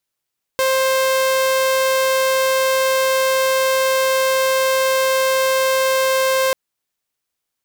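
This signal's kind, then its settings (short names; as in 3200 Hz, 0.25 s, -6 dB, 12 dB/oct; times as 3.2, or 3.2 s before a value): tone saw 527 Hz -12 dBFS 5.94 s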